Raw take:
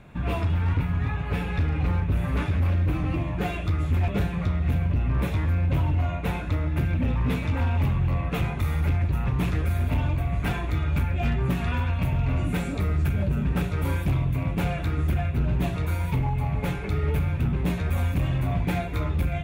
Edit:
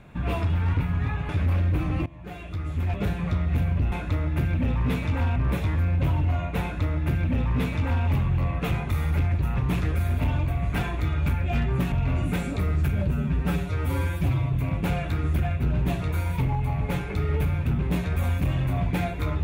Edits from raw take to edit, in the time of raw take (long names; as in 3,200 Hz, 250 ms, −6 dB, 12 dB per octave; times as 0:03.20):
0:01.29–0:02.43: remove
0:03.20–0:04.40: fade in, from −20 dB
0:06.32–0:07.76: duplicate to 0:05.06
0:11.62–0:12.13: remove
0:13.33–0:14.27: time-stretch 1.5×